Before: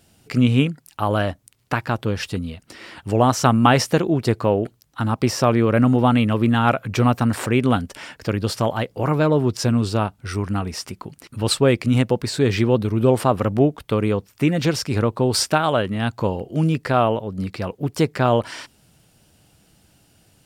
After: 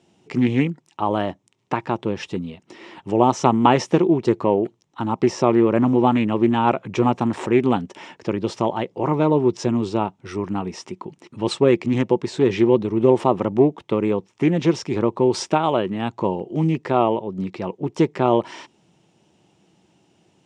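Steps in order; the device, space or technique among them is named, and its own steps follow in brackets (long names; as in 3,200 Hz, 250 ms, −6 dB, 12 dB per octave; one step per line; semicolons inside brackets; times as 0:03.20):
full-range speaker at full volume (highs frequency-modulated by the lows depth 0.24 ms; loudspeaker in its box 150–6,700 Hz, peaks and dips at 180 Hz +5 dB, 360 Hz +10 dB, 910 Hz +7 dB, 1,500 Hz −7 dB, 4,600 Hz −9 dB)
level −2.5 dB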